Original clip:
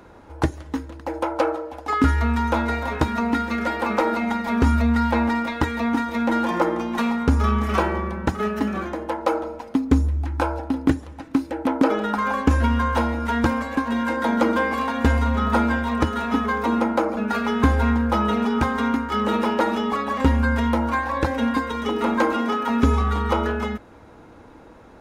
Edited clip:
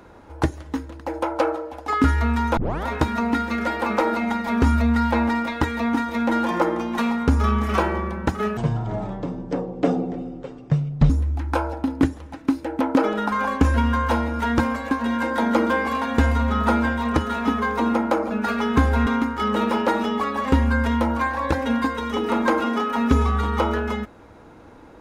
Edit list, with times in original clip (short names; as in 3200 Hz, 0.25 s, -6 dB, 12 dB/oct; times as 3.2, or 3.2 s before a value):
2.57 tape start 0.29 s
8.57–9.96 speed 55%
17.93–18.79 cut